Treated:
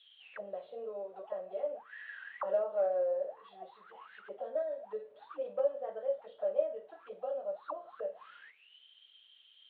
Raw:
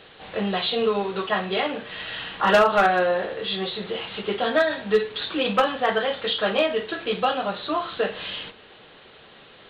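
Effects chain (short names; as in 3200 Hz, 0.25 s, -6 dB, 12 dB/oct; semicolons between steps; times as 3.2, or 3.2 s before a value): auto-wah 570–3600 Hz, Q 22, down, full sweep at -22.5 dBFS; low shelf 320 Hz +4 dB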